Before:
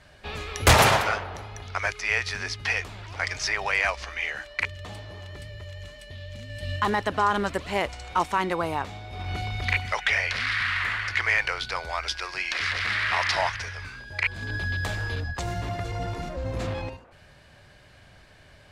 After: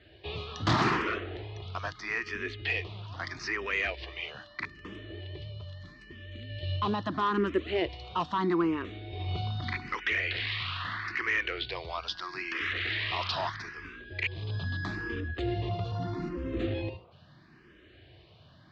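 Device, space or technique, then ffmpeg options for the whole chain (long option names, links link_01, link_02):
barber-pole phaser into a guitar amplifier: -filter_complex "[0:a]asplit=2[link_01][link_02];[link_02]afreqshift=0.78[link_03];[link_01][link_03]amix=inputs=2:normalize=1,asoftclip=type=tanh:threshold=-18.5dB,highpass=77,equalizer=frequency=340:width_type=q:width=4:gain=10,equalizer=frequency=570:width_type=q:width=4:gain=-7,equalizer=frequency=840:width_type=q:width=4:gain=-9,equalizer=frequency=1500:width_type=q:width=4:gain=-7,equalizer=frequency=2200:width_type=q:width=4:gain=-6,lowpass=frequency=4000:width=0.5412,lowpass=frequency=4000:width=1.3066,volume=2dB"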